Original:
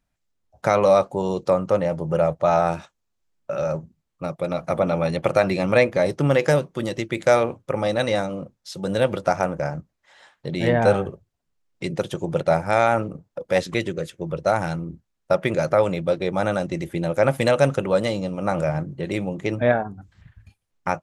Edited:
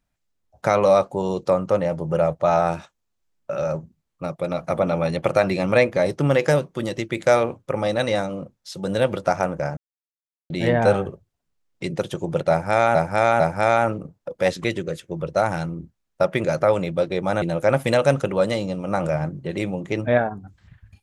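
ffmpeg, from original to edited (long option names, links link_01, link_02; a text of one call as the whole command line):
ffmpeg -i in.wav -filter_complex "[0:a]asplit=6[link_01][link_02][link_03][link_04][link_05][link_06];[link_01]atrim=end=9.77,asetpts=PTS-STARTPTS,afade=type=out:start_time=9.766:duration=0.004:curve=hsin[link_07];[link_02]atrim=start=9.77:end=10.5,asetpts=PTS-STARTPTS,volume=0[link_08];[link_03]atrim=start=10.5:end=12.952,asetpts=PTS-STARTPTS,afade=type=in:duration=0.004:curve=hsin[link_09];[link_04]atrim=start=12.498:end=12.952[link_10];[link_05]atrim=start=12.498:end=16.522[link_11];[link_06]atrim=start=16.958[link_12];[link_07][link_08][link_09]concat=n=3:v=0:a=1[link_13];[link_13][link_10]acrossfade=duration=0.004:curve1=hsin:curve2=hsin[link_14];[link_14][link_11]acrossfade=duration=0.004:curve1=hsin:curve2=hsin[link_15];[link_15][link_12]acrossfade=duration=0.004:curve1=hsin:curve2=hsin" out.wav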